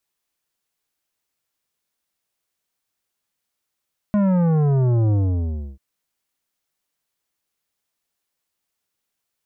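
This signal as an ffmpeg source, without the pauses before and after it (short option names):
-f lavfi -i "aevalsrc='0.158*clip((1.64-t)/0.66,0,1)*tanh(3.76*sin(2*PI*210*1.64/log(65/210)*(exp(log(65/210)*t/1.64)-1)))/tanh(3.76)':d=1.64:s=44100"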